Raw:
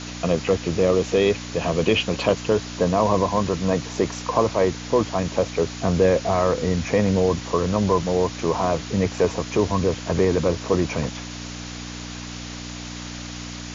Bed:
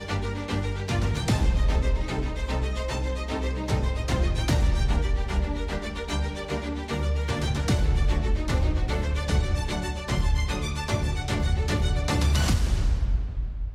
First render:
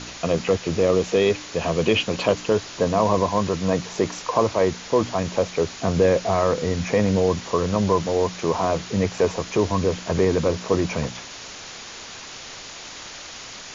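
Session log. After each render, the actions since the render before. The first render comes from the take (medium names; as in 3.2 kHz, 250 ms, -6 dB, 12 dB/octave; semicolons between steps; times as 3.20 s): de-hum 60 Hz, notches 5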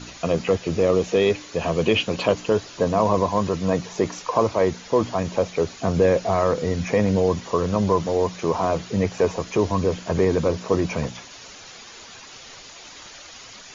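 noise reduction 8 dB, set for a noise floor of -38 dBFS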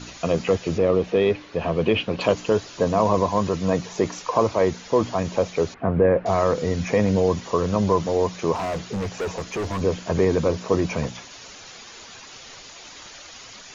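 0.78–2.21 s: distance through air 210 m; 5.74–6.26 s: low-pass 2 kHz 24 dB/octave; 8.55–9.81 s: overload inside the chain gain 23.5 dB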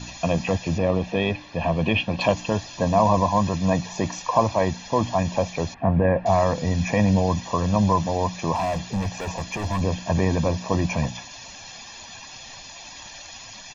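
band-stop 1.5 kHz, Q 6.1; comb 1.2 ms, depth 69%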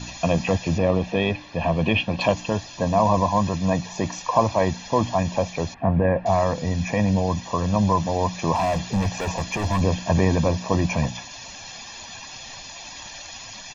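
gain riding 2 s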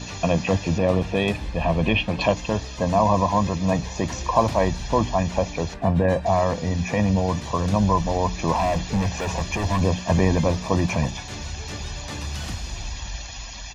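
add bed -9 dB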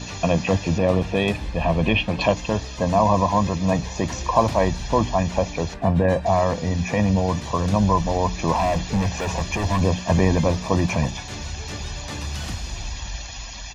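trim +1 dB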